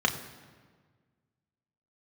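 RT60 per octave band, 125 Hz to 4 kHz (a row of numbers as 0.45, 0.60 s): 2.1, 1.9, 1.6, 1.5, 1.4, 1.1 s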